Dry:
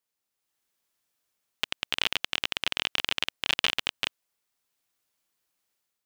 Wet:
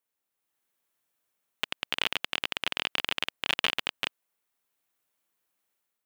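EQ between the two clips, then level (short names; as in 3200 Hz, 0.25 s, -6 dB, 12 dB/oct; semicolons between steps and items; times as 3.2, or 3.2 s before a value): low shelf 95 Hz -8.5 dB; bell 5300 Hz -6 dB 1.6 oct; notch 4800 Hz, Q 23; +1.0 dB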